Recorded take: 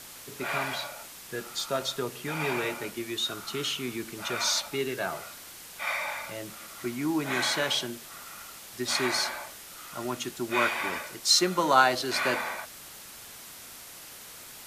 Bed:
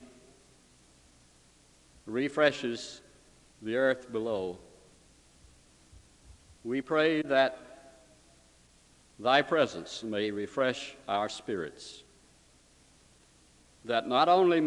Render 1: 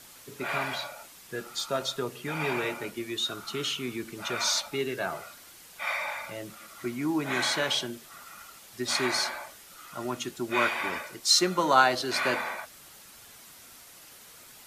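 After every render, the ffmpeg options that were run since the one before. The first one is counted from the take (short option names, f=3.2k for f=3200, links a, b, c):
-af "afftdn=nr=6:nf=-46"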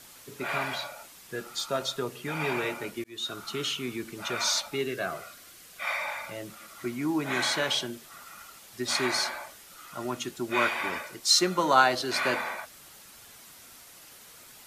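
-filter_complex "[0:a]asettb=1/sr,asplit=3[a][b][c];[a]atrim=end=4.874[d];[b]atrim=start=4.87:end=5.85,asetpts=PTS-STARTPTS,afade=t=in:d=0.004:c=qsin,afade=t=out:st=0.976:d=0.004:c=qsin,asuperstop=centerf=890:order=4:qfactor=5.1[e];[c]atrim=start=5.846[f];[d][e]acrossfade=d=0.004:c1=hsin:c2=qsin[g];[g][f]acrossfade=d=0.004:c1=qsin:c2=hsin,asplit=2[h][i];[h]atrim=end=3.04,asetpts=PTS-STARTPTS,afade=t=out:st=3.036:d=0.004:c=hsin[j];[i]atrim=start=3.04,asetpts=PTS-STARTPTS,afade=t=in:d=0.43:c=qsin[k];[j][k]concat=n=2:v=0:a=1"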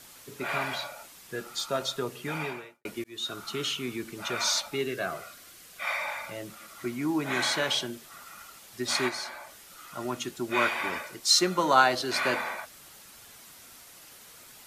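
-filter_complex "[0:a]asplit=3[a][b][c];[a]afade=t=out:st=9.08:d=0.02[d];[b]acompressor=threshold=-46dB:ratio=1.5:attack=3.2:release=140:knee=1:detection=peak,afade=t=in:st=9.08:d=0.02,afade=t=out:st=9.68:d=0.02[e];[c]afade=t=in:st=9.68:d=0.02[f];[d][e][f]amix=inputs=3:normalize=0,asplit=2[g][h];[g]atrim=end=2.85,asetpts=PTS-STARTPTS,afade=t=out:st=2.35:d=0.5:c=qua[i];[h]atrim=start=2.85,asetpts=PTS-STARTPTS,afade=t=in:d=0.004:c=hsin[j];[i][j]concat=n=2:v=0:a=1"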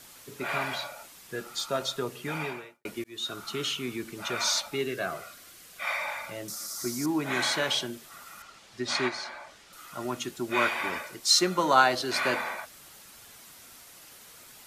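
-filter_complex "[0:a]asettb=1/sr,asplit=3[a][b][c];[a]atrim=end=6.484[d];[b]atrim=start=6.48:end=7.06,asetpts=PTS-STARTPTS,afade=t=in:d=0.004:c=qsin,afade=t=out:st=0.576:d=0.004:c=qsin,highshelf=f=3.9k:t=q:w=3:g=11.5[e];[c]atrim=start=7.056[f];[d][e]acrossfade=d=0.004:c1=hsin:c2=qsin[g];[g][f]acrossfade=d=0.004:c1=qsin:c2=hsin,asettb=1/sr,asplit=3[h][i][j];[h]atrim=end=8.424[k];[i]atrim=start=8.42:end=9.73,asetpts=PTS-STARTPTS,afade=t=in:d=0.004:c=qsin,afade=t=out:st=1.306:d=0.004:c=qsin,lowpass=5.7k[l];[j]atrim=start=9.726[m];[k][l]acrossfade=d=0.004:c1=hsin:c2=qsin[n];[n][m]acrossfade=d=0.004:c1=qsin:c2=hsin"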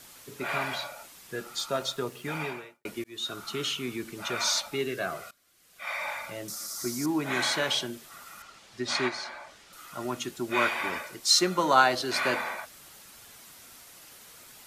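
-filter_complex "[0:a]asettb=1/sr,asplit=3[a][b][c];[a]atrim=end=1.754[d];[b]atrim=start=1.75:end=2.41,asetpts=PTS-STARTPTS,afade=t=in:d=0.004:c=qsin,afade=t=out:st=0.656:d=0.004:c=qsin,aeval=exprs='sgn(val(0))*max(abs(val(0))-0.00133,0)':c=same[e];[c]atrim=start=2.406[f];[d][e]acrossfade=d=0.004:c1=hsin:c2=qsin[g];[g][f]acrossfade=d=0.004:c1=qsin:c2=hsin,asplit=2[h][i];[h]atrim=end=5.31,asetpts=PTS-STARTPTS,afade=t=out:st=5.306:d=0.004:c=hsin:silence=0.112202[j];[i]atrim=start=5.31,asetpts=PTS-STARTPTS,afade=t=in:d=0.76:c=qua:silence=0.112202[k];[j][k]concat=n=2:v=0:a=1"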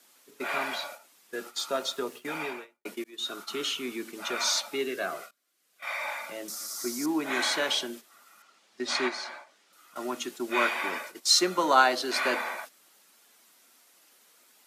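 -af "agate=range=-10dB:threshold=-42dB:ratio=16:detection=peak,highpass=f=220:w=0.5412,highpass=f=220:w=1.3066"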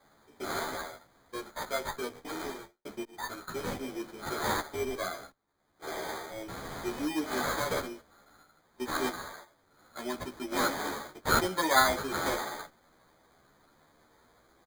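-filter_complex "[0:a]acrusher=samples=16:mix=1:aa=0.000001,asplit=2[a][b];[b]adelay=11.7,afreqshift=0.74[c];[a][c]amix=inputs=2:normalize=1"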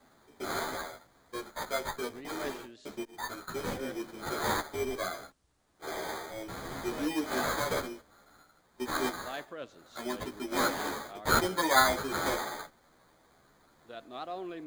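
-filter_complex "[1:a]volume=-16.5dB[a];[0:a][a]amix=inputs=2:normalize=0"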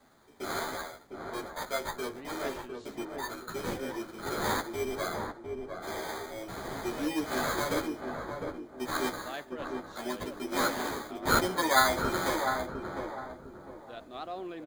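-filter_complex "[0:a]asplit=2[a][b];[b]adelay=705,lowpass=f=910:p=1,volume=-3.5dB,asplit=2[c][d];[d]adelay=705,lowpass=f=910:p=1,volume=0.39,asplit=2[e][f];[f]adelay=705,lowpass=f=910:p=1,volume=0.39,asplit=2[g][h];[h]adelay=705,lowpass=f=910:p=1,volume=0.39,asplit=2[i][j];[j]adelay=705,lowpass=f=910:p=1,volume=0.39[k];[a][c][e][g][i][k]amix=inputs=6:normalize=0"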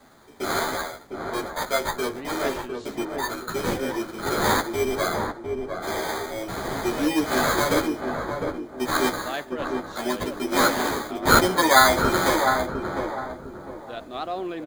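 -af "volume=9dB,alimiter=limit=-3dB:level=0:latency=1"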